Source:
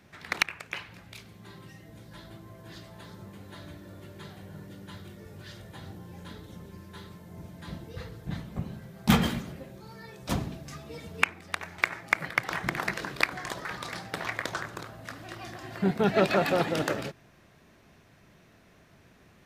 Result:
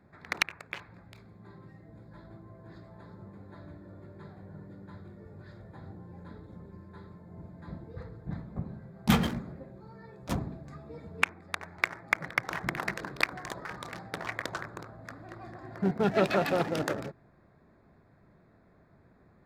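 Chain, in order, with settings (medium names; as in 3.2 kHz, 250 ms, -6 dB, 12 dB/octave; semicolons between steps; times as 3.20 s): local Wiener filter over 15 samples; trim -2 dB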